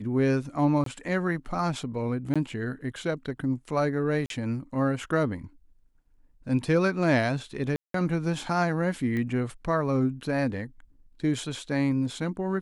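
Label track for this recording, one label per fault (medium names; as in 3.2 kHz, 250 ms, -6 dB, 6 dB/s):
0.840000	0.860000	dropout 23 ms
2.340000	2.360000	dropout 16 ms
4.260000	4.300000	dropout 42 ms
7.760000	7.940000	dropout 183 ms
9.170000	9.170000	pop -21 dBFS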